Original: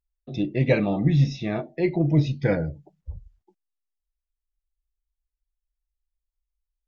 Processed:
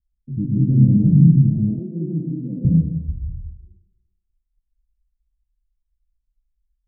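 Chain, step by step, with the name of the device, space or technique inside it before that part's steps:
club heard from the street (brickwall limiter −15.5 dBFS, peak gain reduction 9 dB; low-pass filter 210 Hz 24 dB per octave; convolution reverb RT60 1.1 s, pre-delay 113 ms, DRR −4 dB)
0:01.79–0:02.65: high-pass filter 220 Hz 24 dB per octave
level +8.5 dB

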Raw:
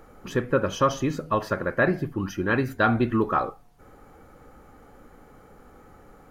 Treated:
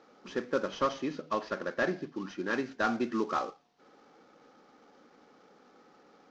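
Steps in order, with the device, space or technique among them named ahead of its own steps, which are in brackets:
early wireless headset (high-pass filter 200 Hz 24 dB per octave; variable-slope delta modulation 32 kbit/s)
0:00.69–0:02.53: low-pass filter 6,700 Hz 12 dB per octave
level −7 dB

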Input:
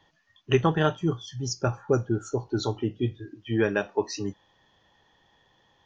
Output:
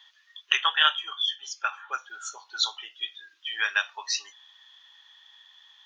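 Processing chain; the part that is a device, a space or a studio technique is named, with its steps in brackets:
headphones lying on a table (high-pass filter 1,200 Hz 24 dB per octave; parametric band 3,500 Hz +10 dB 0.4 octaves)
0:00.57–0:01.98: high shelf with overshoot 3,800 Hz −7.5 dB, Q 3
level +6.5 dB

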